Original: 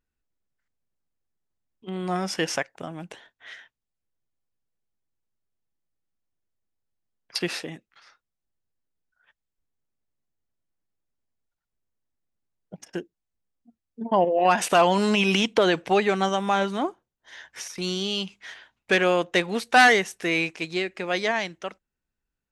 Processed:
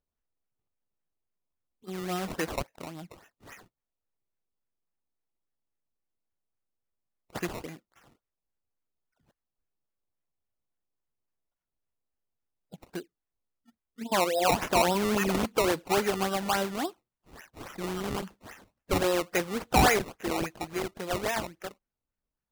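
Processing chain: coarse spectral quantiser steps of 15 dB; decimation with a swept rate 19×, swing 100% 3.6 Hz; trim -5 dB

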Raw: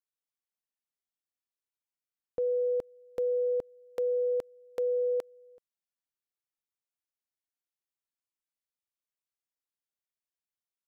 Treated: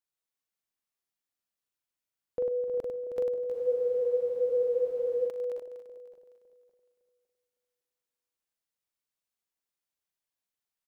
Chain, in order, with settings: backward echo that repeats 279 ms, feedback 45%, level -12.5 dB; multi-tap echo 42/98/316/363/394 ms -4.5/-4.5/-8.5/-15.5/-12 dB; spectral freeze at 3.56 s, 1.73 s

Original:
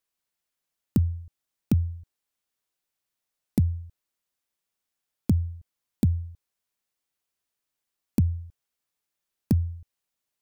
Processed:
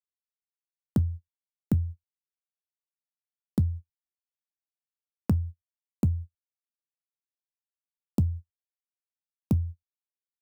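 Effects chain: 3.61–5.30 s: peaking EQ 800 Hz +8.5 dB 1.6 oct; gate -31 dBFS, range -47 dB; feedback comb 69 Hz, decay 0.15 s, harmonics all, mix 40%

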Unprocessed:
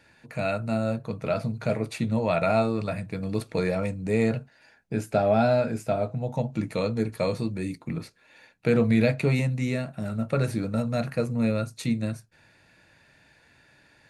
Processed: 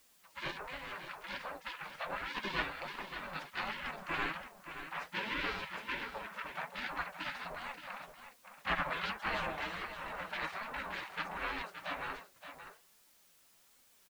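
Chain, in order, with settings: comb filter that takes the minimum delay 2.6 ms; spectral gate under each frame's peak -25 dB weak; low-pass 1.9 kHz 12 dB/octave; added noise white -77 dBFS; flange 1.3 Hz, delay 3.4 ms, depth 3.7 ms, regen +48%; on a send: delay 572 ms -10 dB; on the sum: trim +14.5 dB

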